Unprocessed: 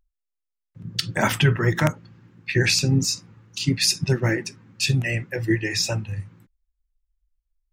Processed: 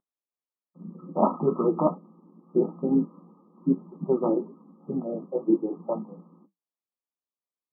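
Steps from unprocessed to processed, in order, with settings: flange 2 Hz, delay 7.4 ms, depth 4.9 ms, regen -69%; brick-wall FIR band-pass 170–1300 Hz; trim +6.5 dB

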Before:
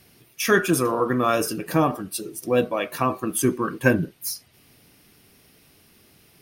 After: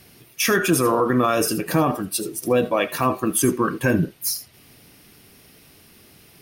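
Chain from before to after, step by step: peak limiter -14 dBFS, peak gain reduction 9.5 dB; on a send: tilt EQ +3 dB/octave + reverberation, pre-delay 55 ms, DRR 18.5 dB; on the sum: trim +5 dB

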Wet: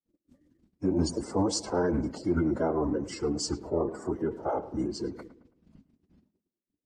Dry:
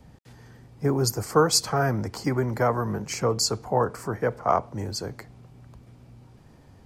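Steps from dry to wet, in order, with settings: coarse spectral quantiser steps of 30 dB; gate -46 dBFS, range -48 dB; peaking EQ 350 Hz +13.5 dB 1.8 oct; peak limiter -10.5 dBFS, peak gain reduction 11.5 dB; vibrato 2.7 Hz 45 cents; formant-preserving pitch shift -7.5 st; peaking EQ 140 Hz -7 dB 0.21 oct; tape echo 107 ms, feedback 43%, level -14.5 dB, low-pass 2.3 kHz; trim -7 dB

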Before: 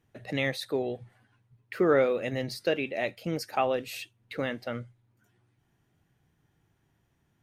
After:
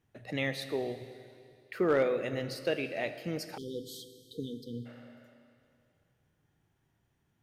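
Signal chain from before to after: Schroeder reverb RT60 2.4 s, combs from 26 ms, DRR 10 dB; overload inside the chain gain 15.5 dB; spectral selection erased 3.57–4.86 s, 500–3000 Hz; trim -4 dB

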